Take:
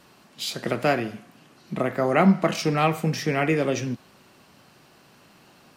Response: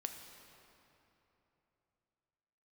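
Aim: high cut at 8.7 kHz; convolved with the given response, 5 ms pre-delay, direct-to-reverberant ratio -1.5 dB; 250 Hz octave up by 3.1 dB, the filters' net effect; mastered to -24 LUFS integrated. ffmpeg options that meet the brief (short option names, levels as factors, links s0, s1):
-filter_complex "[0:a]lowpass=8700,equalizer=f=250:t=o:g=4.5,asplit=2[s0][s1];[1:a]atrim=start_sample=2205,adelay=5[s2];[s1][s2]afir=irnorm=-1:irlink=0,volume=1.41[s3];[s0][s3]amix=inputs=2:normalize=0,volume=0.531"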